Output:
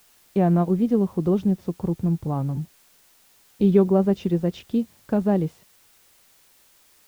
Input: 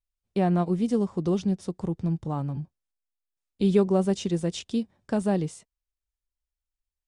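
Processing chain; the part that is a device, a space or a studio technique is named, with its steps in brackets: cassette deck with a dirty head (tape spacing loss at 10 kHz 31 dB; wow and flutter; white noise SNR 34 dB); trim +5 dB

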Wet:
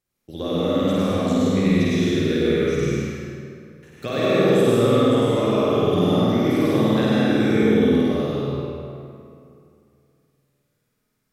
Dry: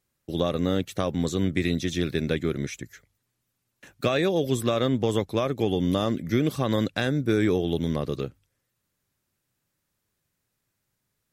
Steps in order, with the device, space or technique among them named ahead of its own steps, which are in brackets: tunnel (flutter echo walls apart 8.8 m, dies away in 1.3 s; reverberation RT60 2.6 s, pre-delay 87 ms, DRR -7 dB); trim -6 dB

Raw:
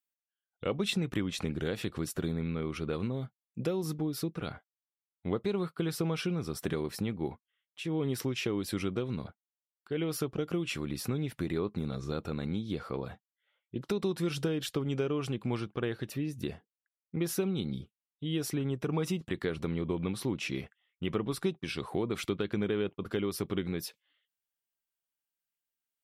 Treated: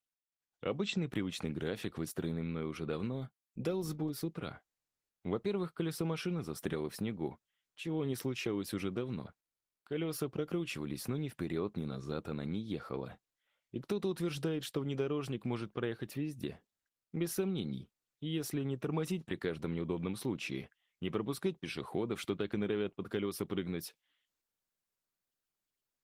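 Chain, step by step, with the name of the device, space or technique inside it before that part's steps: video call (high-pass 100 Hz 12 dB/octave; level rider gain up to 5.5 dB; trim -8.5 dB; Opus 20 kbps 48 kHz)

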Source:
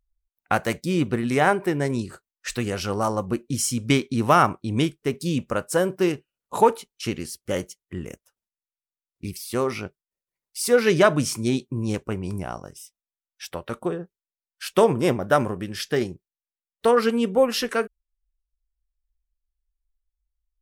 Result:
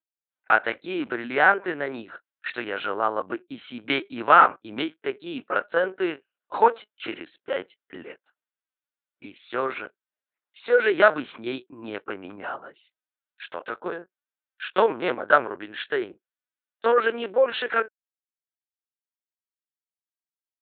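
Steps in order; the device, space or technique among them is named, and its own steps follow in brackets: talking toy (LPC vocoder at 8 kHz pitch kept; high-pass 410 Hz 12 dB/octave; peaking EQ 1.5 kHz +9 dB 0.45 oct)

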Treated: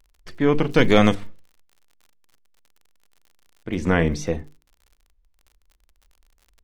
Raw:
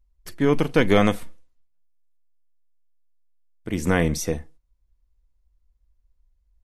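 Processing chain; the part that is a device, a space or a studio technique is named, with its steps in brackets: lo-fi chain (low-pass 4.2 kHz 12 dB/octave; wow and flutter; crackle 54 per s -43 dBFS); hum notches 50/100/150/200/250/300/350/400/450 Hz; 0.69–1.15 s: tone controls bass +3 dB, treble +12 dB; trim +1.5 dB

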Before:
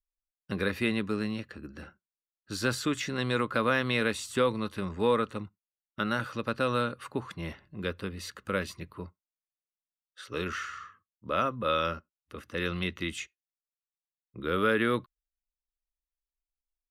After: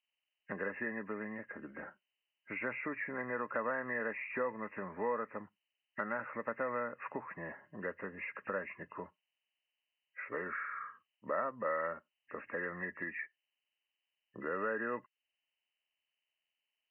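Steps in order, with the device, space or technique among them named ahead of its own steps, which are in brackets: hearing aid with frequency lowering (knee-point frequency compression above 1.6 kHz 4:1; compression 2.5:1, threshold -40 dBFS, peak gain reduction 13 dB; cabinet simulation 260–5600 Hz, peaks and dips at 340 Hz -4 dB, 620 Hz +6 dB, 920 Hz +6 dB, 2.4 kHz -4 dB); trim +1.5 dB

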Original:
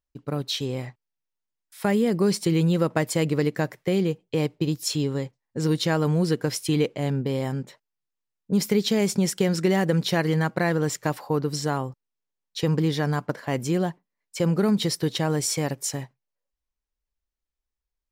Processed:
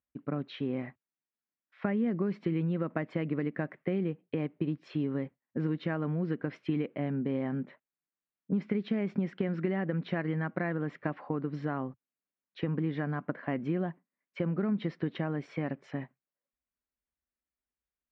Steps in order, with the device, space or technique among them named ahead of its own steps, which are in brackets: bass amplifier (compression, threshold -25 dBFS, peak gain reduction 8.5 dB; cabinet simulation 86–2300 Hz, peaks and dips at 120 Hz -9 dB, 250 Hz +5 dB, 460 Hz -5 dB, 880 Hz -6 dB); trim -1.5 dB

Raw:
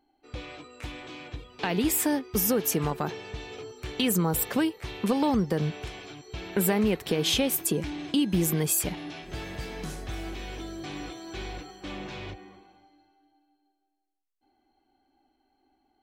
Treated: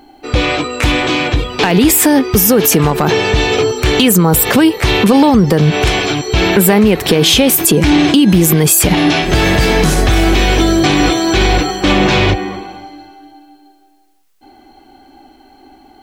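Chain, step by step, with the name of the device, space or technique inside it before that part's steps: loud club master (compression 1.5:1, threshold -32 dBFS, peak gain reduction 4.5 dB; hard clipper -21 dBFS, distortion -28 dB; loudness maximiser +29 dB); trim -1 dB

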